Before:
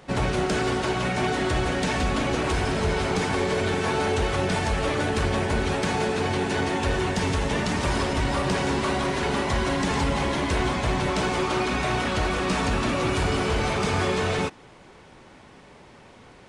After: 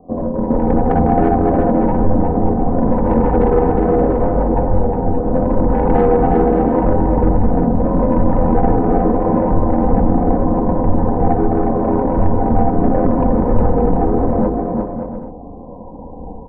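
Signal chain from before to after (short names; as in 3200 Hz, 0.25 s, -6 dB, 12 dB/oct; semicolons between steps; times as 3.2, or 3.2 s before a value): moving spectral ripple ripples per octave 1.2, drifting -0.78 Hz, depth 23 dB; steep low-pass 930 Hz 72 dB/oct; low shelf 110 Hz +9.5 dB; AGC gain up to 8 dB; soft clip -10 dBFS, distortion -13 dB; ring modulator 43 Hz; comb 4 ms, depth 68%; on a send: bouncing-ball echo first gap 0.36 s, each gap 0.6×, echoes 5; on the sum: gain +3 dB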